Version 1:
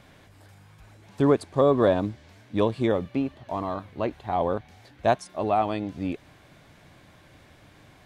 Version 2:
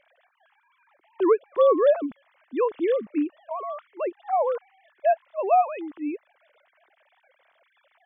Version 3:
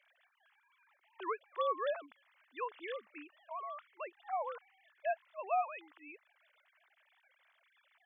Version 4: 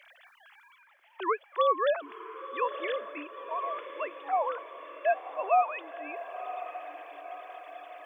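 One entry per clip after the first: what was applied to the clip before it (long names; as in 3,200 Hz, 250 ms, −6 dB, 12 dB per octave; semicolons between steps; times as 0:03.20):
three sine waves on the formant tracks; level +1 dB
high-pass filter 1,200 Hz 12 dB per octave; level −4.5 dB
reversed playback; upward compression, threshold −58 dBFS; reversed playback; feedback delay with all-pass diffusion 1,025 ms, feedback 56%, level −11 dB; level +9 dB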